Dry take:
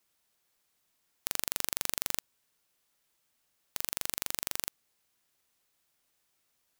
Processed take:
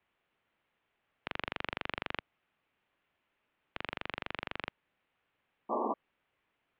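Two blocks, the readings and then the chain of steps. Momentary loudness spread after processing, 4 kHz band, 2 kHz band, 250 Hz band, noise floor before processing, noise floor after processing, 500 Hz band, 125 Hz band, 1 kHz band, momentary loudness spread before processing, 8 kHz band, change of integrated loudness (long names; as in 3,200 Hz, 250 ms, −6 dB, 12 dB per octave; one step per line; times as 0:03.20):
11 LU, −5.5 dB, +3.0 dB, +8.5 dB, −77 dBFS, −82 dBFS, +9.0 dB, +3.0 dB, +8.0 dB, 7 LU, below −40 dB, −6.0 dB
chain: single-sideband voice off tune −260 Hz 310–3,200 Hz
sound drawn into the spectrogram noise, 0:05.69–0:05.94, 210–1,200 Hz −36 dBFS
level +3.5 dB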